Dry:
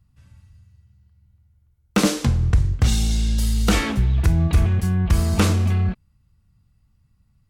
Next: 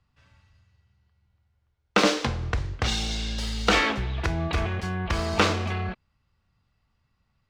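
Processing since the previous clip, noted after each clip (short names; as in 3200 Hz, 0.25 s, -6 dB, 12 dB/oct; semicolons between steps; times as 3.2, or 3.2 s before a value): median filter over 3 samples; three-band isolator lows -15 dB, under 370 Hz, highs -19 dB, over 5700 Hz; gain +3.5 dB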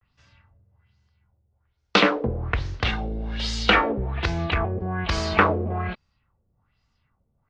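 LFO low-pass sine 1.2 Hz 450–6400 Hz; vibrato 0.31 Hz 44 cents; gain +1 dB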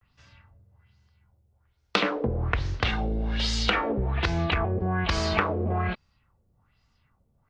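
compressor 6:1, threshold -24 dBFS, peak gain reduction 11.5 dB; gain +2.5 dB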